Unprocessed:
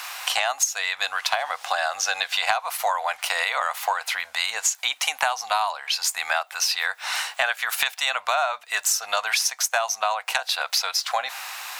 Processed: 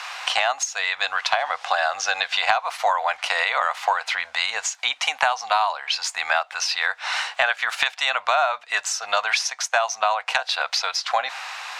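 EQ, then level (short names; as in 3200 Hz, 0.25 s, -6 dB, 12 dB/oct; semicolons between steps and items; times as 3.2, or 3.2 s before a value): air absorption 100 m; +3.5 dB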